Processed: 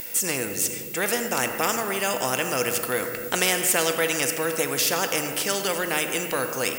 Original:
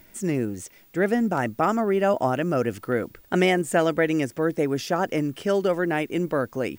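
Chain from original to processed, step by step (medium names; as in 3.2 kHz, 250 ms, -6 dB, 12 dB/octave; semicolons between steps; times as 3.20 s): RIAA curve recording; small resonant body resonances 490/2700 Hz, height 15 dB, ringing for 95 ms; on a send at -10.5 dB: reverberation RT60 1.5 s, pre-delay 15 ms; on the sum: spectrum-flattening compressor 2:1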